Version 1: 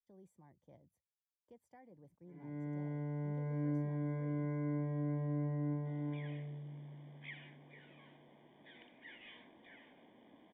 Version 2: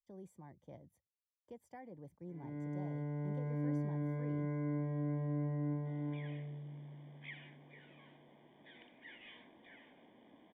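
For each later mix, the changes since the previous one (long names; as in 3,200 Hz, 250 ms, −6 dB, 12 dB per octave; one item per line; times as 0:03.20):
speech +8.0 dB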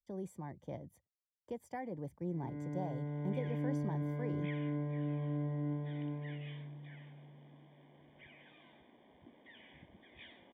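speech +9.5 dB
second sound: entry −2.80 s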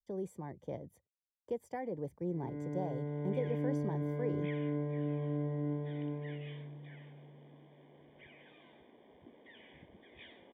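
master: add parametric band 440 Hz +7.5 dB 0.63 octaves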